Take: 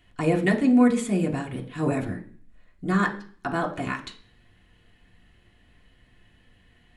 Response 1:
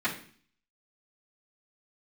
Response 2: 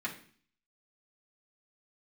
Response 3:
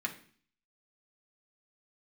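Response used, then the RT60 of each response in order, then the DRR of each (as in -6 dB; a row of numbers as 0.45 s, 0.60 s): 3; 0.45 s, 0.45 s, 0.45 s; -12.5 dB, -5.5 dB, -0.5 dB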